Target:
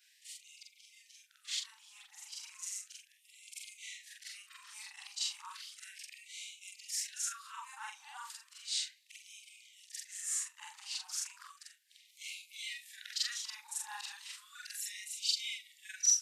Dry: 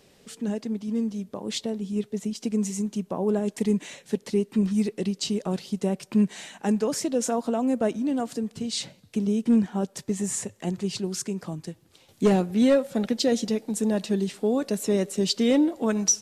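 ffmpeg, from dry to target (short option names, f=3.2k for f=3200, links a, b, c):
-af "afftfilt=real='re':imag='-im':win_size=4096:overlap=0.75,afftfilt=real='re*gte(b*sr/1024,750*pow(2100/750,0.5+0.5*sin(2*PI*0.34*pts/sr)))':imag='im*gte(b*sr/1024,750*pow(2100/750,0.5+0.5*sin(2*PI*0.34*pts/sr)))':win_size=1024:overlap=0.75"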